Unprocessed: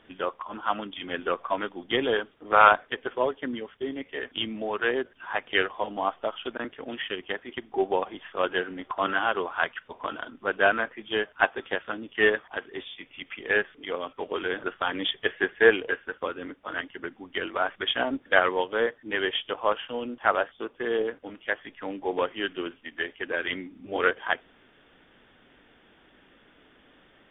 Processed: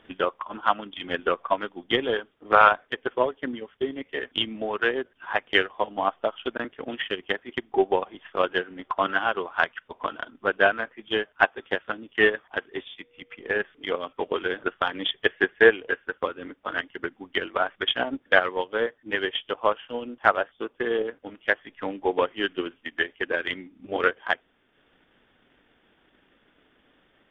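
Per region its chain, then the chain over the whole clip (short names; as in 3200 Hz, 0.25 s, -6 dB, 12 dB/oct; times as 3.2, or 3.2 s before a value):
13.01–13.59 high shelf 2100 Hz -9 dB + resonator 120 Hz, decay 0.95 s, mix 40% + whine 480 Hz -55 dBFS
whole clip: transient shaper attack +6 dB, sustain -5 dB; vocal rider within 3 dB 2 s; gain -2 dB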